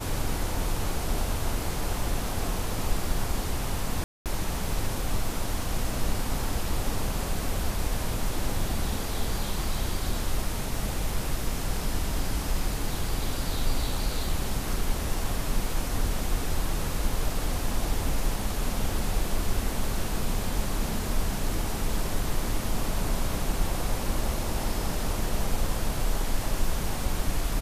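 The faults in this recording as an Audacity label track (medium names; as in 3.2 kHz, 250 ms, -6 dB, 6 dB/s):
4.040000	4.260000	dropout 218 ms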